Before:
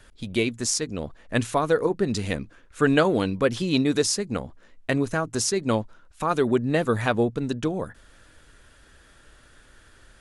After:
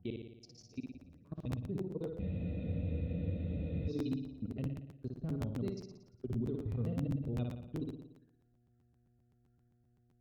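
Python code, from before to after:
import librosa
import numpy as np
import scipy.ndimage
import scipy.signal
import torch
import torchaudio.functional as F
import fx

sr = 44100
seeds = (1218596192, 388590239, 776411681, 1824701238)

y = fx.block_reorder(x, sr, ms=104.0, group=4)
y = fx.noise_reduce_blind(y, sr, reduce_db=11)
y = scipy.signal.sosfilt(scipy.signal.butter(2, 54.0, 'highpass', fs=sr, output='sos'), y)
y = fx.tone_stack(y, sr, knobs='10-0-1')
y = fx.level_steps(y, sr, step_db=23)
y = fx.dmg_buzz(y, sr, base_hz=120.0, harmonics=6, level_db=-80.0, tilt_db=0, odd_only=False)
y = fx.env_phaser(y, sr, low_hz=500.0, high_hz=1700.0, full_db=-54.5)
y = fx.air_absorb(y, sr, metres=270.0)
y = fx.room_flutter(y, sr, wall_m=9.9, rt60_s=0.85)
y = fx.buffer_crackle(y, sr, first_s=0.47, period_s=0.13, block=512, kind='repeat')
y = fx.spec_freeze(y, sr, seeds[0], at_s=2.22, hold_s=1.67)
y = F.gain(torch.from_numpy(y), 9.5).numpy()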